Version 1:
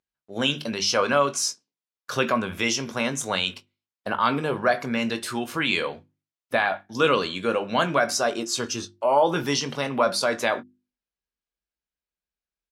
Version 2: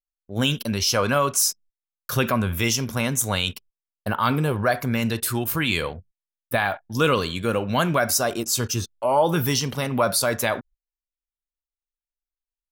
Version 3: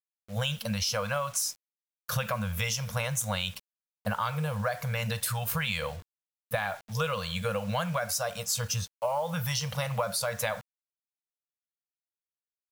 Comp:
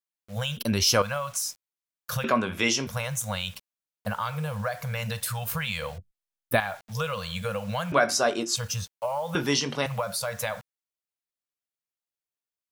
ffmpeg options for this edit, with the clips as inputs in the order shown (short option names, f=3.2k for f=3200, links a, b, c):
-filter_complex "[1:a]asplit=2[a][b];[0:a]asplit=3[c][d][e];[2:a]asplit=6[f][g][h][i][j][k];[f]atrim=end=0.572[l];[a]atrim=start=0.568:end=1.022[m];[g]atrim=start=1.018:end=2.242[n];[c]atrim=start=2.238:end=2.872[o];[h]atrim=start=2.868:end=5.982[p];[b]atrim=start=5.978:end=6.602[q];[i]atrim=start=6.598:end=7.922[r];[d]atrim=start=7.918:end=8.562[s];[j]atrim=start=8.558:end=9.352[t];[e]atrim=start=9.348:end=9.862[u];[k]atrim=start=9.858[v];[l][m]acrossfade=d=0.004:c1=hsin:c2=hsin[w];[w][n]acrossfade=d=0.004:c1=hsin:c2=hsin[x];[x][o]acrossfade=d=0.004:c1=hsin:c2=hsin[y];[y][p]acrossfade=d=0.004:c1=hsin:c2=hsin[z];[z][q]acrossfade=d=0.004:c1=hsin:c2=hsin[aa];[aa][r]acrossfade=d=0.004:c1=hsin:c2=hsin[ab];[ab][s]acrossfade=d=0.004:c1=hsin:c2=hsin[ac];[ac][t]acrossfade=d=0.004:c1=hsin:c2=hsin[ad];[ad][u]acrossfade=d=0.004:c1=hsin:c2=hsin[ae];[ae][v]acrossfade=d=0.004:c1=hsin:c2=hsin"